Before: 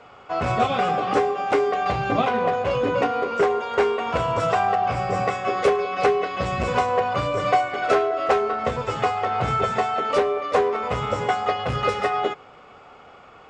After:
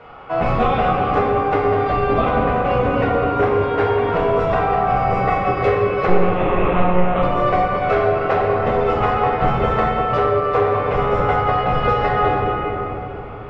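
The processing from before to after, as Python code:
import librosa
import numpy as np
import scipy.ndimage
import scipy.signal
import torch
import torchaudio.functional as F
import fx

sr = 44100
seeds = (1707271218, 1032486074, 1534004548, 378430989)

y = fx.octave_divider(x, sr, octaves=2, level_db=-2.0)
y = fx.lpc_monotone(y, sr, seeds[0], pitch_hz=180.0, order=10, at=(6.08, 7.23))
y = scipy.signal.sosfilt(scipy.signal.butter(2, 2800.0, 'lowpass', fs=sr, output='sos'), y)
y = fx.room_shoebox(y, sr, seeds[1], volume_m3=190.0, walls='hard', distance_m=0.64)
y = fx.rider(y, sr, range_db=4, speed_s=0.5)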